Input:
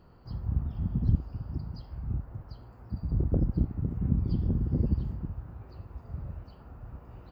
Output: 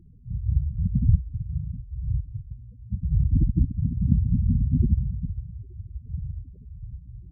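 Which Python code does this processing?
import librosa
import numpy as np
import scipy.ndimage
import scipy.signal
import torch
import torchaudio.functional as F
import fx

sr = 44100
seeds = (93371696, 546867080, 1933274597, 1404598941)

y = fx.wiener(x, sr, points=25)
y = fx.spec_gate(y, sr, threshold_db=-10, keep='strong')
y = y * 10.0 ** (6.5 / 20.0)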